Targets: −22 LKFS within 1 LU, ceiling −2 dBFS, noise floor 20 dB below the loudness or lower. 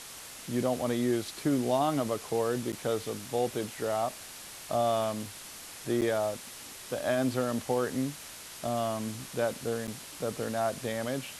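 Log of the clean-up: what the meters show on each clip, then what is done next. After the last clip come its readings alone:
number of dropouts 3; longest dropout 8.1 ms; background noise floor −46 dBFS; target noise floor −52 dBFS; integrated loudness −31.5 LKFS; sample peak −15.5 dBFS; target loudness −22.0 LKFS
→ repair the gap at 0:02.72/0:06.01/0:09.87, 8.1 ms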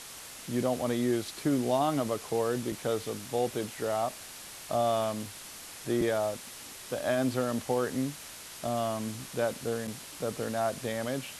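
number of dropouts 0; background noise floor −46 dBFS; target noise floor −52 dBFS
→ noise reduction from a noise print 6 dB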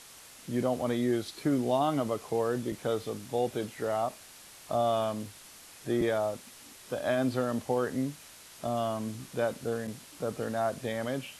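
background noise floor −52 dBFS; integrated loudness −31.5 LKFS; sample peak −16.0 dBFS; target loudness −22.0 LKFS
→ level +9.5 dB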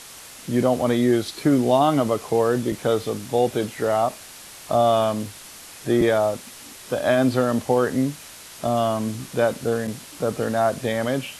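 integrated loudness −22.0 LKFS; sample peak −6.5 dBFS; background noise floor −42 dBFS

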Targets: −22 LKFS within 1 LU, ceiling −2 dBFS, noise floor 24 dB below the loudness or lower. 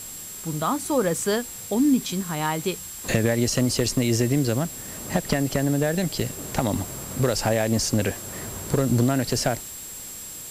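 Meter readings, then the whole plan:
interfering tone 7,600 Hz; level of the tone −38 dBFS; background noise floor −38 dBFS; target noise floor −49 dBFS; integrated loudness −24.5 LKFS; sample peak −9.5 dBFS; target loudness −22.0 LKFS
→ notch filter 7,600 Hz, Q 30
noise reduction from a noise print 11 dB
level +2.5 dB

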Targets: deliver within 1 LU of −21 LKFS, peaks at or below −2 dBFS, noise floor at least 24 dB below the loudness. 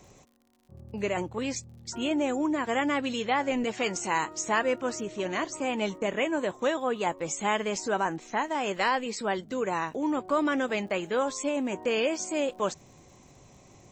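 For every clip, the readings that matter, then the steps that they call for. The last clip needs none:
crackle rate 51 per second; integrated loudness −29.0 LKFS; sample peak −13.5 dBFS; target loudness −21.0 LKFS
→ click removal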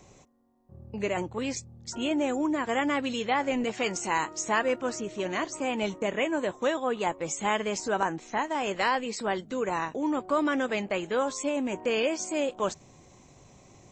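crackle rate 0.072 per second; integrated loudness −29.0 LKFS; sample peak −11.0 dBFS; target loudness −21.0 LKFS
→ level +8 dB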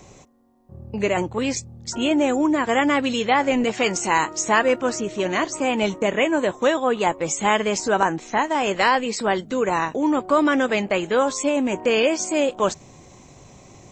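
integrated loudness −21.0 LKFS; sample peak −3.0 dBFS; background noise floor −48 dBFS

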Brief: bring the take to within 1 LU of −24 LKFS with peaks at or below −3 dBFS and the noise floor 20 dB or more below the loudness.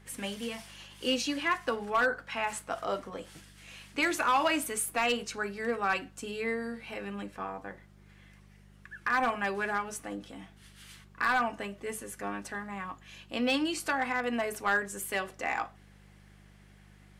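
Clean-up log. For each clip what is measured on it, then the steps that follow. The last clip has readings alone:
share of clipped samples 0.3%; peaks flattened at −20.0 dBFS; mains hum 50 Hz; hum harmonics up to 200 Hz; level of the hum −53 dBFS; integrated loudness −32.0 LKFS; sample peak −20.0 dBFS; target loudness −24.0 LKFS
→ clipped peaks rebuilt −20 dBFS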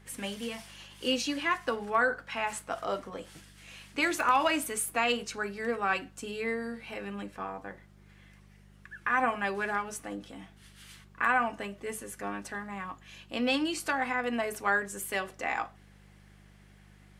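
share of clipped samples 0.0%; mains hum 50 Hz; hum harmonics up to 200 Hz; level of the hum −53 dBFS
→ hum removal 50 Hz, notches 4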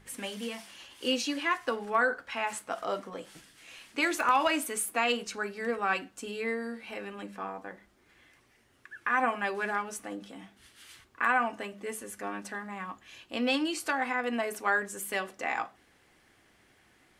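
mains hum none found; integrated loudness −31.5 LKFS; sample peak −12.0 dBFS; target loudness −24.0 LKFS
→ level +7.5 dB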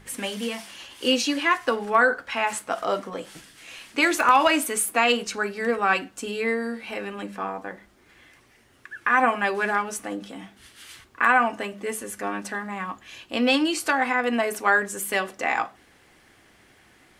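integrated loudness −24.0 LKFS; sample peak −4.5 dBFS; background noise floor −57 dBFS

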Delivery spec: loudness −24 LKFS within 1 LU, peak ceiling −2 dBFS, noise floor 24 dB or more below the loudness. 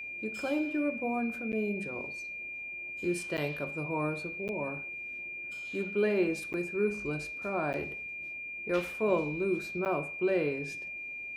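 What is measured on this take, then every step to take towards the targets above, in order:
number of dropouts 6; longest dropout 9.1 ms; interfering tone 2,400 Hz; level of the tone −38 dBFS; integrated loudness −33.0 LKFS; sample peak −15.0 dBFS; target loudness −24.0 LKFS
→ repair the gap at 0:01.52/0:03.37/0:04.48/0:06.53/0:07.73/0:09.85, 9.1 ms
notch filter 2,400 Hz, Q 30
level +9 dB

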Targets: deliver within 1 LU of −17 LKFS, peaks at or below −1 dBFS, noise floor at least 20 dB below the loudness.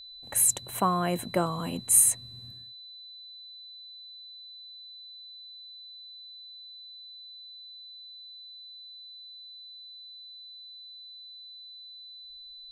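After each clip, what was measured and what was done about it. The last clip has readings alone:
interfering tone 4,000 Hz; level of the tone −44 dBFS; integrated loudness −24.0 LKFS; sample peak −7.0 dBFS; target loudness −17.0 LKFS
→ notch filter 4,000 Hz, Q 30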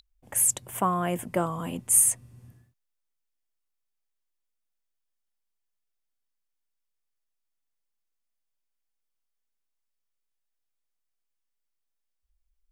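interfering tone none found; integrated loudness −24.0 LKFS; sample peak −6.5 dBFS; target loudness −17.0 LKFS
→ level +7 dB
brickwall limiter −1 dBFS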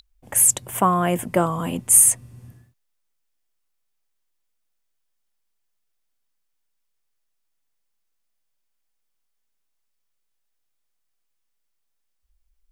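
integrated loudness −17.0 LKFS; sample peak −1.0 dBFS; background noise floor −73 dBFS

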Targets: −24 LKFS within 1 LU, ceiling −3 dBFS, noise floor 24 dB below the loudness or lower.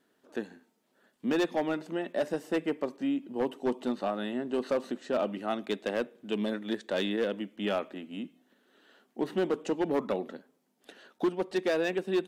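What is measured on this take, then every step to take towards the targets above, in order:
share of clipped samples 1.6%; peaks flattened at −22.0 dBFS; integrated loudness −32.0 LKFS; sample peak −22.0 dBFS; target loudness −24.0 LKFS
→ clipped peaks rebuilt −22 dBFS
level +8 dB

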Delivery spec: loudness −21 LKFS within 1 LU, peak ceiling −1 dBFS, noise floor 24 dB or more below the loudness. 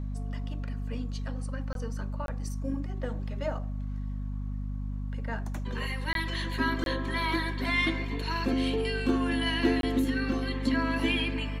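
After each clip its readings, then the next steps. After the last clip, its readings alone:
number of dropouts 5; longest dropout 22 ms; mains hum 50 Hz; hum harmonics up to 250 Hz; level of the hum −31 dBFS; integrated loudness −31.0 LKFS; sample peak −13.5 dBFS; target loudness −21.0 LKFS
→ repair the gap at 0:01.73/0:02.26/0:06.13/0:06.84/0:09.81, 22 ms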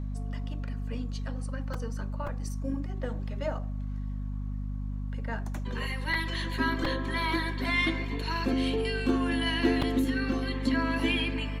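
number of dropouts 0; mains hum 50 Hz; hum harmonics up to 250 Hz; level of the hum −31 dBFS
→ hum removal 50 Hz, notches 5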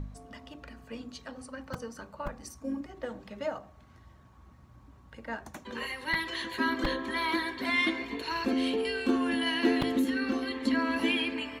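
mains hum none found; integrated loudness −31.0 LKFS; sample peak −13.0 dBFS; target loudness −21.0 LKFS
→ level +10 dB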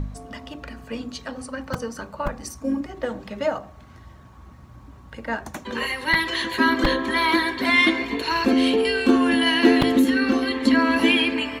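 integrated loudness −21.0 LKFS; sample peak −3.0 dBFS; background noise floor −46 dBFS

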